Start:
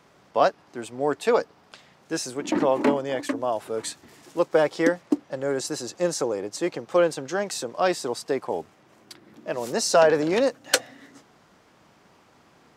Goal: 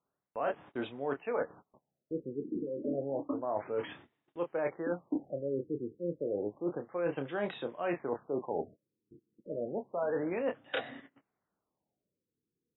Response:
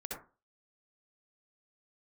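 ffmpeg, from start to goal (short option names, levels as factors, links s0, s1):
-filter_complex "[0:a]asplit=2[s0][s1];[s1]adelay=29,volume=0.355[s2];[s0][s2]amix=inputs=2:normalize=0,agate=range=0.0355:threshold=0.00631:ratio=16:detection=peak,areverse,acompressor=threshold=0.0316:ratio=12,areverse,afftfilt=real='re*lt(b*sr/1024,490*pow(3900/490,0.5+0.5*sin(2*PI*0.3*pts/sr)))':imag='im*lt(b*sr/1024,490*pow(3900/490,0.5+0.5*sin(2*PI*0.3*pts/sr)))':win_size=1024:overlap=0.75"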